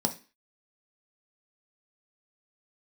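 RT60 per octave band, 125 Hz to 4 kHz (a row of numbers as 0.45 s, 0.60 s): 0.30 s, 0.40 s, 0.30 s, 0.35 s, 0.40 s, 0.35 s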